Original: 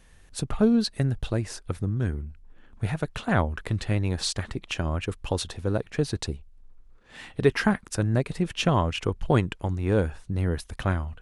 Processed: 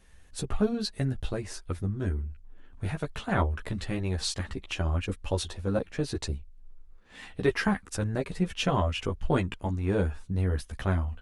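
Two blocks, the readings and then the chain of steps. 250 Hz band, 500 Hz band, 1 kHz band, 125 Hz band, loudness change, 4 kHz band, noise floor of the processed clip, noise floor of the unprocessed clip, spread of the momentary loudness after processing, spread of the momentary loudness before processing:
-4.5 dB, -3.5 dB, -3.0 dB, -3.5 dB, -3.5 dB, -3.0 dB, -53 dBFS, -55 dBFS, 8 LU, 10 LU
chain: chorus voices 6, 0.36 Hz, delay 13 ms, depth 2.7 ms

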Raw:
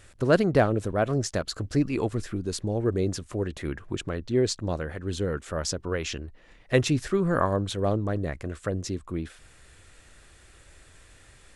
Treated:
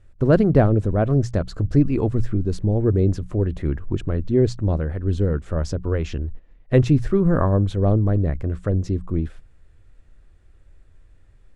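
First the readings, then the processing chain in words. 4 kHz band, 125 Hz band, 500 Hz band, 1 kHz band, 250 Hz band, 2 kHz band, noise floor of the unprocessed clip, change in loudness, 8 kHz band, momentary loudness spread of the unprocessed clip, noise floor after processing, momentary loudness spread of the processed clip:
-7.0 dB, +10.5 dB, +4.0 dB, +0.5 dB, +7.0 dB, -2.5 dB, -55 dBFS, +6.5 dB, n/a, 10 LU, -52 dBFS, 9 LU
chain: gate -47 dBFS, range -11 dB; tilt -3.5 dB/oct; notches 60/120/180 Hz

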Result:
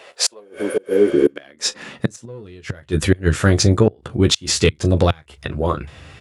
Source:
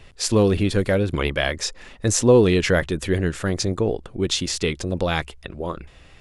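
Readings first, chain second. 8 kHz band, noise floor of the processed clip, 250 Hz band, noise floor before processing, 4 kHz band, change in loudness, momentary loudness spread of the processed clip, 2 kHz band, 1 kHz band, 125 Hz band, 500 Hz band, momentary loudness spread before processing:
+3.0 dB, -52 dBFS, +2.0 dB, -48 dBFS, +4.0 dB, +2.5 dB, 15 LU, -0.5 dB, +1.5 dB, +4.0 dB, +1.5 dB, 14 LU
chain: spectral repair 0.42–1.29, 480–8800 Hz after; bell 1400 Hz +3 dB 0.54 oct; in parallel at -4 dB: soft clip -13.5 dBFS, distortion -13 dB; on the sum: early reflections 14 ms -7.5 dB, 39 ms -17.5 dB; flipped gate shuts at -7 dBFS, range -30 dB; high-pass sweep 570 Hz -> 97 Hz, 0.66–2.46; gain +2.5 dB

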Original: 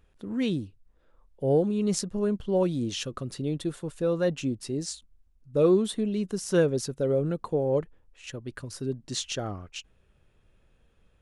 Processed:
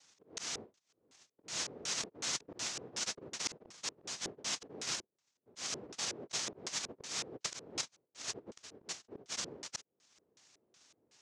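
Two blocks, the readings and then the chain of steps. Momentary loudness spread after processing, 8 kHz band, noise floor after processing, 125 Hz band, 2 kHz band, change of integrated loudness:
8 LU, +1.0 dB, -85 dBFS, -26.5 dB, -3.0 dB, -11.5 dB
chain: low shelf 260 Hz -10 dB; noise vocoder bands 1; auto swell 0.494 s; reverse; compressor 8:1, threshold -43 dBFS, peak gain reduction 17.5 dB; reverse; LFO low-pass square 2.7 Hz 430–6300 Hz; gain +4.5 dB

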